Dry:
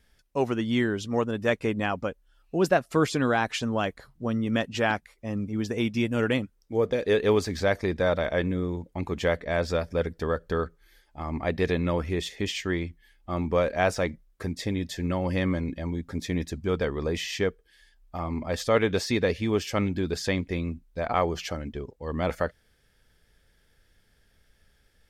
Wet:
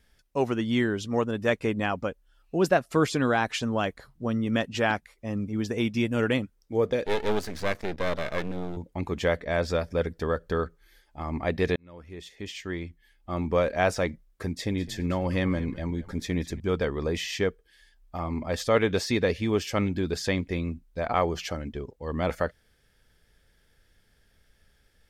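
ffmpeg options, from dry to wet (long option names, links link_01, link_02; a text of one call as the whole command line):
ffmpeg -i in.wav -filter_complex "[0:a]asettb=1/sr,asplit=3[link_01][link_02][link_03];[link_01]atrim=end=7.064[link_04];[link_02]atrim=start=7.06:end=8.77,asetpts=PTS-STARTPTS,afade=type=in:duration=0.004:curve=qsin,afade=type=out:start_time=1.706:duration=0.004:curve=qsin,aeval=exprs='max(val(0),0)':channel_layout=same[link_05];[link_03]atrim=start=8.766[link_06];[link_04][link_05]acrossfade=duration=0.004:curve1=hsin:curve2=qsin[link_07];[link_07][link_06]acrossfade=duration=0.004:curve1=qsin:curve2=hsin,asettb=1/sr,asplit=3[link_08][link_09][link_10];[link_08]atrim=end=14.514[link_11];[link_09]atrim=start=14.51:end=16.6,asetpts=PTS-STARTPTS,afade=type=in:duration=0.004:curve=qsin,afade=type=out:start_time=2.086:duration=0.004:curve=qsin,asplit=4[link_12][link_13][link_14][link_15];[link_13]adelay=208,afreqshift=-74,volume=-16.5dB[link_16];[link_14]adelay=416,afreqshift=-148,volume=-26.7dB[link_17];[link_15]adelay=624,afreqshift=-222,volume=-36.8dB[link_18];[link_12][link_16][link_17][link_18]amix=inputs=4:normalize=0,atrim=end_sample=92169[link_19];[link_10]atrim=start=16.596[link_20];[link_11][link_19]acrossfade=duration=0.004:curve1=hsin:curve2=qsin[link_21];[link_21][link_20]acrossfade=duration=0.004:curve1=qsin:curve2=hsin,asplit=2[link_22][link_23];[link_22]atrim=end=11.76,asetpts=PTS-STARTPTS,afade=type=out:start_time=11.756:duration=0.004:curve=hsin[link_24];[link_23]atrim=start=11.76,asetpts=PTS-STARTPTS,afade=type=in:duration=1.8[link_25];[link_24][link_25]concat=n=2:v=0:a=1" out.wav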